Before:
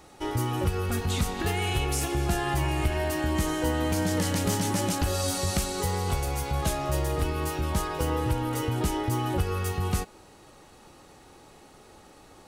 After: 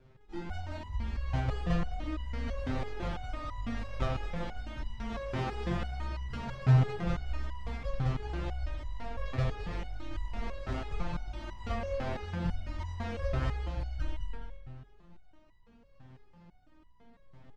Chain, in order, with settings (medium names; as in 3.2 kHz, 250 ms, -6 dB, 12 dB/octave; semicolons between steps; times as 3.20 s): tone controls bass +13 dB, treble -4 dB; decimation with a swept rate 31×, swing 160% 1.1 Hz; tape speed -29%; distance through air 150 m; on a send: feedback delay 212 ms, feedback 23%, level -4 dB; on the sum: spring tank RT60 1.4 s, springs 47 ms, chirp 35 ms, DRR 3.5 dB; resonator arpeggio 6 Hz 130–990 Hz